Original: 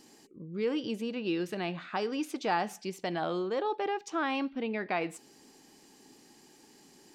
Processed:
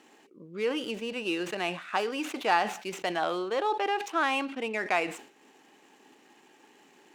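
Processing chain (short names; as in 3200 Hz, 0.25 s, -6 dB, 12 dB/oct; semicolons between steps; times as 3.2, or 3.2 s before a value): median filter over 9 samples; bell 2700 Hz +3.5 dB 0.26 oct; transient shaper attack 0 dB, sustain -4 dB; weighting filter A; sustainer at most 110 dB/s; gain +5.5 dB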